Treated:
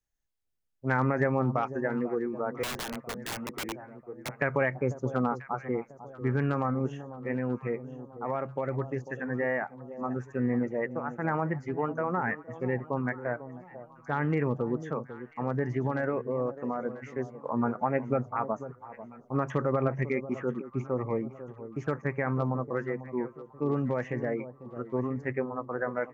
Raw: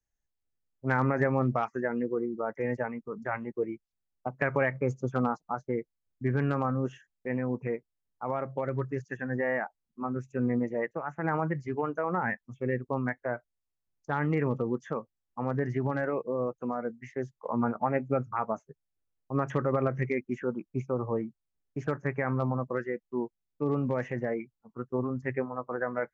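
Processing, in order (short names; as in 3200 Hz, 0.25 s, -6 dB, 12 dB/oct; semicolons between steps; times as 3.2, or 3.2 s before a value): echo with dull and thin repeats by turns 0.495 s, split 940 Hz, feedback 62%, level -12.5 dB; 2.63–4.29 wrapped overs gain 29 dB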